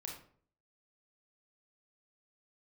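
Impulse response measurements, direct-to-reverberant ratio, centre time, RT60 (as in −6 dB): −1.0 dB, 33 ms, 0.55 s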